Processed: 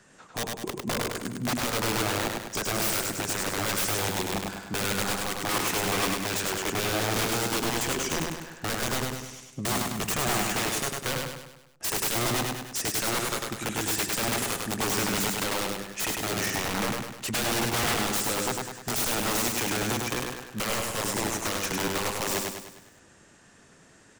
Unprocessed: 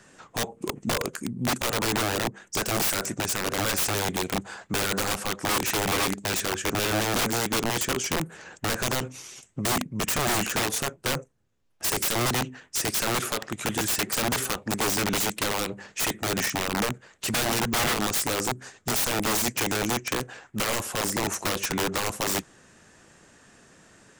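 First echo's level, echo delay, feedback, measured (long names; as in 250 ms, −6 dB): −3.0 dB, 101 ms, 49%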